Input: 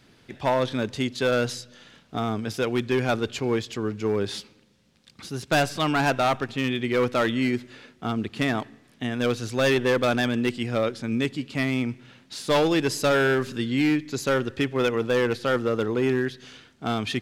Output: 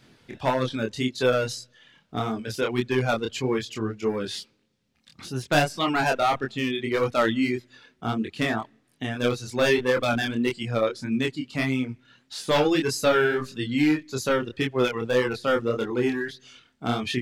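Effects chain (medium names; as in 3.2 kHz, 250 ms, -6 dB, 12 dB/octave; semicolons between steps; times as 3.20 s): reverb removal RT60 1.2 s; chorus 1.7 Hz, depth 4.7 ms; trim +4 dB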